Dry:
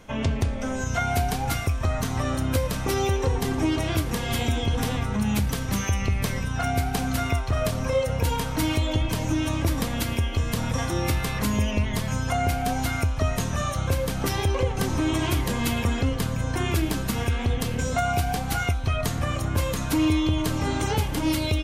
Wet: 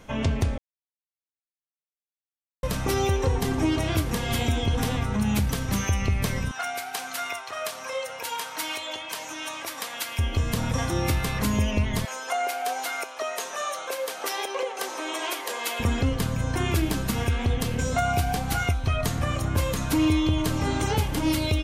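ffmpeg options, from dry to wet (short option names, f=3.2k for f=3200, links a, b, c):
-filter_complex "[0:a]asettb=1/sr,asplit=3[a][b][c];[a]atrim=end=6.514[d];[b]atrim=start=6.51:end=10.19,asetpts=PTS-STARTPTS,afade=t=in:d=0.004:c=qsin,afade=t=out:st=3.676:d=0.004:c=qsin,highpass=820[e];[c]atrim=start=10.186[f];[d][e]acrossfade=d=0.004:c1=hsin:c2=qsin[g];[g][f]acrossfade=d=0.004:c1=qsin:c2=hsin,asettb=1/sr,asplit=3[h][i][j];[h]atrim=end=12.054[k];[i]atrim=start=12.05:end=15.8,asetpts=PTS-STARTPTS,afade=t=in:d=0.004:c=qsin,afade=t=out:st=3.746:d=0.004:c=qsin,highpass=f=450:w=0.5412,highpass=f=450:w=1.3066[l];[j]atrim=start=15.796[m];[k][l]acrossfade=d=0.004:c1=hsin:c2=qsin[n];[n][m]acrossfade=d=0.004:c1=qsin:c2=hsin,asplit=3[o][p][q];[o]atrim=end=0.58,asetpts=PTS-STARTPTS,afade=t=out:st=0.576:d=0.004:c=hsin[r];[p]atrim=start=0.58:end=2.63,asetpts=PTS-STARTPTS,volume=0[s];[q]atrim=start=2.63,asetpts=PTS-STARTPTS,afade=t=in:d=0.004:c=hsin[t];[r][s][t]concat=n=3:v=0:a=1"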